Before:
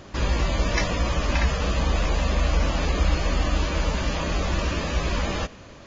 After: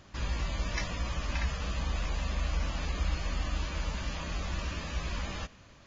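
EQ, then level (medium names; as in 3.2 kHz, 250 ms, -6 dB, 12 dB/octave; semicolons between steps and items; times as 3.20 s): peaking EQ 430 Hz -7 dB 1.7 oct; -9.0 dB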